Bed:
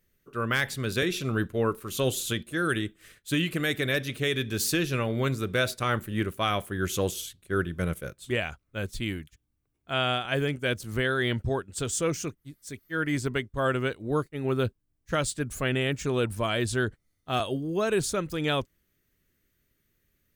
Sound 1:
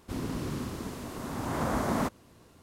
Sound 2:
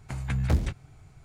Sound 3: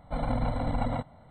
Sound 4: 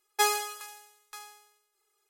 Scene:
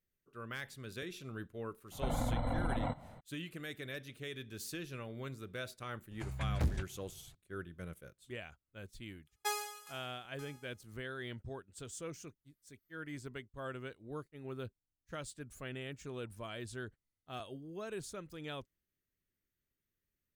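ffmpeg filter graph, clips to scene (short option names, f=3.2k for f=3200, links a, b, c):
-filter_complex "[0:a]volume=-17dB[a];[3:a]acompressor=threshold=-30dB:ratio=6:attack=3.2:release=140:knee=1:detection=peak,atrim=end=1.3,asetpts=PTS-STARTPTS,afade=t=in:d=0.02,afade=t=out:st=1.28:d=0.02,adelay=1910[b];[2:a]atrim=end=1.24,asetpts=PTS-STARTPTS,volume=-8.5dB,afade=t=in:d=0.004:c=hsin,afade=t=out:st=1.236:d=0.004:c=hsin,adelay=6110[c];[4:a]atrim=end=2.09,asetpts=PTS-STARTPTS,volume=-11.5dB,afade=t=in:d=0.004:c=hsin,afade=t=out:st=2.086:d=0.004:c=hsin,adelay=9260[d];[a][b][c][d]amix=inputs=4:normalize=0"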